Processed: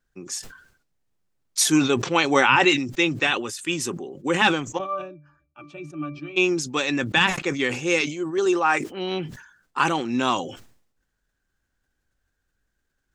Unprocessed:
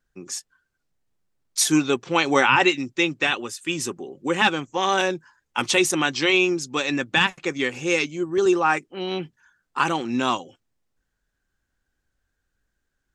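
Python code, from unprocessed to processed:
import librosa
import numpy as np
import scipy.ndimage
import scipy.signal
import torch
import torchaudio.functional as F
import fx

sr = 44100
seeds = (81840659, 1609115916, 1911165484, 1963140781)

y = fx.octave_resonator(x, sr, note='D', decay_s=0.2, at=(4.77, 6.36), fade=0.02)
y = fx.highpass(y, sr, hz=320.0, slope=6, at=(8.01, 8.91))
y = fx.sustainer(y, sr, db_per_s=88.0)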